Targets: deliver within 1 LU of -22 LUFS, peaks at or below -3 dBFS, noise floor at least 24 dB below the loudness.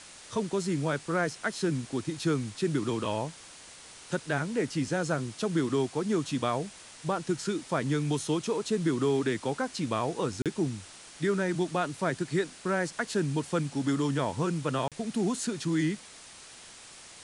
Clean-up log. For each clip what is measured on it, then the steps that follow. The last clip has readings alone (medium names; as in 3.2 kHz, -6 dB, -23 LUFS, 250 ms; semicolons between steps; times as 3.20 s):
dropouts 2; longest dropout 37 ms; noise floor -50 dBFS; noise floor target -55 dBFS; loudness -30.5 LUFS; peak level -15.5 dBFS; loudness target -22.0 LUFS
-> interpolate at 10.42/14.88 s, 37 ms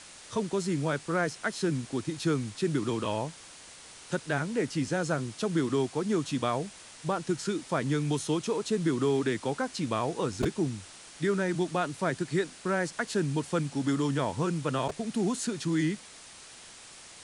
dropouts 0; noise floor -50 dBFS; noise floor target -55 dBFS
-> noise reduction 6 dB, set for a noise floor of -50 dBFS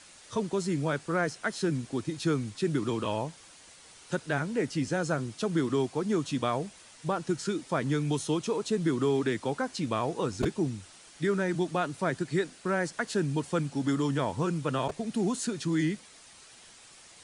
noise floor -54 dBFS; noise floor target -55 dBFS
-> noise reduction 6 dB, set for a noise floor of -54 dBFS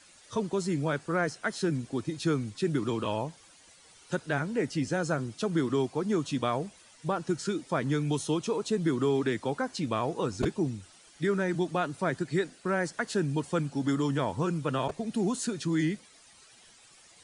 noise floor -57 dBFS; loudness -30.5 LUFS; peak level -15.5 dBFS; loudness target -22.0 LUFS
-> trim +8.5 dB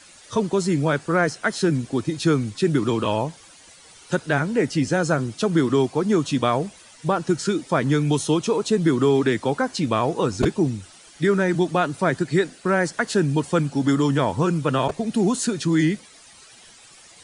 loudness -22.0 LUFS; peak level -7.0 dBFS; noise floor -49 dBFS